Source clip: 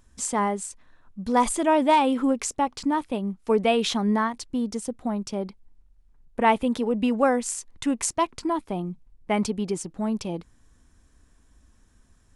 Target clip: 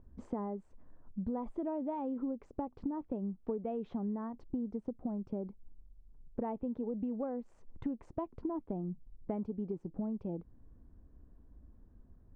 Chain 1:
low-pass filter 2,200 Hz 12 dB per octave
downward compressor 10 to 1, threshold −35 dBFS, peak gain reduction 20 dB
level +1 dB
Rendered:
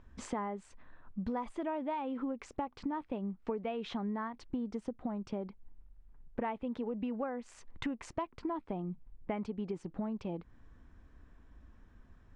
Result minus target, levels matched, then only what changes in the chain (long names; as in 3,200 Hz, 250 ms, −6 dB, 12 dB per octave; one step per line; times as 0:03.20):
2,000 Hz band +15.5 dB
change: low-pass filter 570 Hz 12 dB per octave